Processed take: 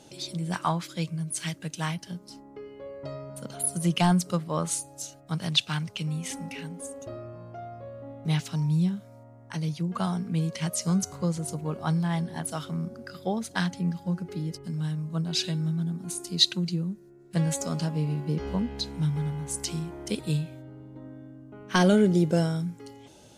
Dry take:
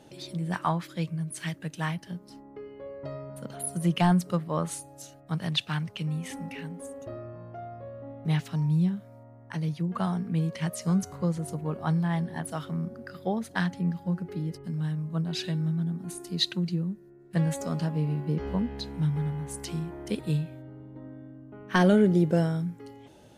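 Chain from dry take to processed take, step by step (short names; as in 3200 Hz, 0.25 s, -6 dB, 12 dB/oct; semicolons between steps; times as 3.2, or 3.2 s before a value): bell 6600 Hz +9.5 dB 1.8 oct; notch 1800 Hz, Q 12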